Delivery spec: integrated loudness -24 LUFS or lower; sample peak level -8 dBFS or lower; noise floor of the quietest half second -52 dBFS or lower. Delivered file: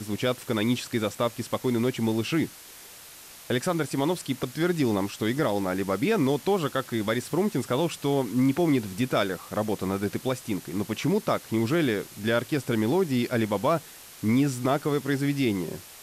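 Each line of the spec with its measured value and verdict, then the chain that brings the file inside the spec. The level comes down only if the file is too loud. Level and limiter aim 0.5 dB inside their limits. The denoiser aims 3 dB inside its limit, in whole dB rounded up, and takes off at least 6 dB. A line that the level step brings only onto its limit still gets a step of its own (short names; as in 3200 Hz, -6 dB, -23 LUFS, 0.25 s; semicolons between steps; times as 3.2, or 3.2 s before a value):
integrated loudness -27.0 LUFS: OK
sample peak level -13.0 dBFS: OK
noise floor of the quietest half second -47 dBFS: fail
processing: denoiser 8 dB, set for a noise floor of -47 dBFS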